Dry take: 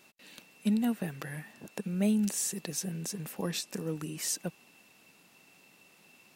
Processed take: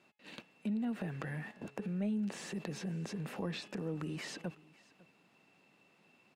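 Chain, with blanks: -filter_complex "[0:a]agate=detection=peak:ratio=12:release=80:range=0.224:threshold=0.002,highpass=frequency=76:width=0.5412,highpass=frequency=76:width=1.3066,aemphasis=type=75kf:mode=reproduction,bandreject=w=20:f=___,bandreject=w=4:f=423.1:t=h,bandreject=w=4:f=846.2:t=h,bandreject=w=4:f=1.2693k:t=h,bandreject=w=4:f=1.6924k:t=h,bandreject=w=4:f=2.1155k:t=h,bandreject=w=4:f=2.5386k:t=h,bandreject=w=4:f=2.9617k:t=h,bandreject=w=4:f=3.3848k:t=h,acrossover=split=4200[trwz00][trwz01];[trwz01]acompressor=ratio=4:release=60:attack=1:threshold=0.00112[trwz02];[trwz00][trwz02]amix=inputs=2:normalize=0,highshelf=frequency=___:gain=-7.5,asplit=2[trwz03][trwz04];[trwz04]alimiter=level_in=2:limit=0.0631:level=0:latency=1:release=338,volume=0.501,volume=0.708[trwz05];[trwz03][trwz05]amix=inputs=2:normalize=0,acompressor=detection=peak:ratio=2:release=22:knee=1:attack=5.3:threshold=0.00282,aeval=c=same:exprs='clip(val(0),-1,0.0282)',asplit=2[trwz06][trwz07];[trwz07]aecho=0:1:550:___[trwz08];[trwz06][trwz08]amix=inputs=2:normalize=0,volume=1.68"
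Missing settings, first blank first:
5.8k, 12k, 0.0708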